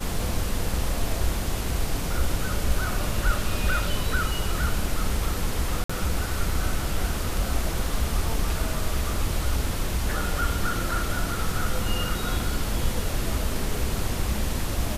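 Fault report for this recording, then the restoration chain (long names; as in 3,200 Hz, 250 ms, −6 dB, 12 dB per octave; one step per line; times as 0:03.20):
0:05.84–0:05.89: drop-out 55 ms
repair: repair the gap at 0:05.84, 55 ms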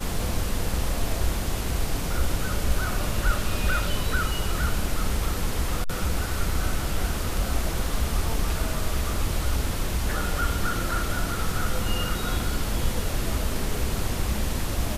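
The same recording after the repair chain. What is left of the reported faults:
none of them is left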